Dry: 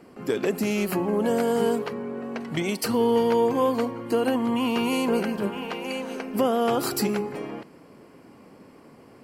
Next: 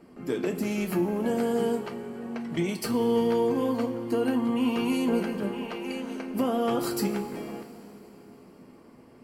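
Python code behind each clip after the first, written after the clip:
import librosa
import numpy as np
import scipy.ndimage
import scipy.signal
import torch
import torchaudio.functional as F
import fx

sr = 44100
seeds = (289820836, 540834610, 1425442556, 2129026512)

y = fx.low_shelf(x, sr, hz=300.0, db=6.5)
y = fx.rev_double_slope(y, sr, seeds[0], early_s=0.21, late_s=3.8, knee_db=-19, drr_db=3.5)
y = F.gain(torch.from_numpy(y), -7.0).numpy()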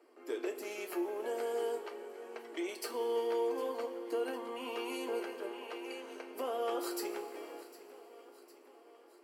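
y = scipy.signal.sosfilt(scipy.signal.butter(8, 320.0, 'highpass', fs=sr, output='sos'), x)
y = fx.echo_feedback(y, sr, ms=756, feedback_pct=59, wet_db=-18.0)
y = F.gain(torch.from_numpy(y), -7.5).numpy()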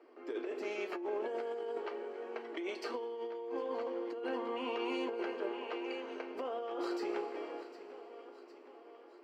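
y = fx.over_compress(x, sr, threshold_db=-39.0, ratio=-1.0)
y = fx.air_absorb(y, sr, metres=180.0)
y = F.gain(torch.from_numpy(y), 2.0).numpy()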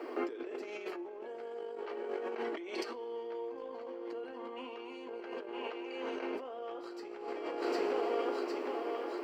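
y = fx.over_compress(x, sr, threshold_db=-50.0, ratio=-1.0)
y = F.gain(torch.from_numpy(y), 9.5).numpy()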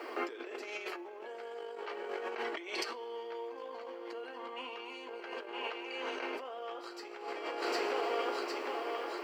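y = fx.highpass(x, sr, hz=1200.0, slope=6)
y = F.gain(torch.from_numpy(y), 7.0).numpy()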